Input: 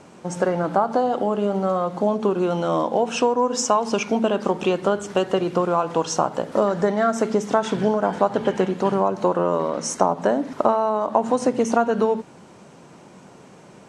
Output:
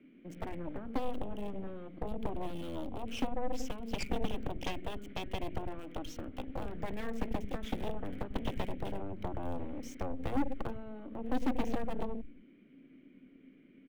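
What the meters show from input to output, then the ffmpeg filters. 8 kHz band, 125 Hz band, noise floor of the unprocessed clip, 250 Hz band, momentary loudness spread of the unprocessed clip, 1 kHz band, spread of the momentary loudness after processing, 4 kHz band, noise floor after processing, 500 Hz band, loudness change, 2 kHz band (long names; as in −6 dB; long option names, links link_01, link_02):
−23.5 dB, −12.0 dB, −47 dBFS, −14.5 dB, 3 LU, −20.5 dB, 13 LU, −13.5 dB, −59 dBFS, −21.5 dB, −18.0 dB, −15.0 dB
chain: -filter_complex "[0:a]asplit=3[link_01][link_02][link_03];[link_01]bandpass=frequency=270:width_type=q:width=8,volume=0dB[link_04];[link_02]bandpass=frequency=2290:width_type=q:width=8,volume=-6dB[link_05];[link_03]bandpass=frequency=3010:width_type=q:width=8,volume=-9dB[link_06];[link_04][link_05][link_06]amix=inputs=3:normalize=0,aeval=exprs='0.141*(cos(1*acos(clip(val(0)/0.141,-1,1)))-cos(1*PI/2))+0.01*(cos(3*acos(clip(val(0)/0.141,-1,1)))-cos(3*PI/2))+0.0282*(cos(7*acos(clip(val(0)/0.141,-1,1)))-cos(7*PI/2))+0.0141*(cos(8*acos(clip(val(0)/0.141,-1,1)))-cos(8*PI/2))':channel_layout=same,acrossover=split=130|3000[link_07][link_08][link_09];[link_07]aecho=1:1:93.29|207:0.794|0.316[link_10];[link_08]asoftclip=type=tanh:threshold=-32dB[link_11];[link_09]acrusher=bits=9:mix=0:aa=0.000001[link_12];[link_10][link_11][link_12]amix=inputs=3:normalize=0,volume=3.5dB"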